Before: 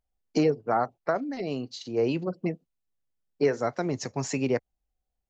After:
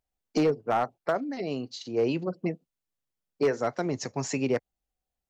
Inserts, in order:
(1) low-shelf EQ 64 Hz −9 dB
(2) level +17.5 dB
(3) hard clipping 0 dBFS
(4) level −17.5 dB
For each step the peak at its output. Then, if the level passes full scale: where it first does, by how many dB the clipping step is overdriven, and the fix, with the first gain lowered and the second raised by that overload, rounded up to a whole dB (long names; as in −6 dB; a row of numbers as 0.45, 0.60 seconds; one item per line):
−12.5, +5.0, 0.0, −17.5 dBFS
step 2, 5.0 dB
step 2 +12.5 dB, step 4 −12.5 dB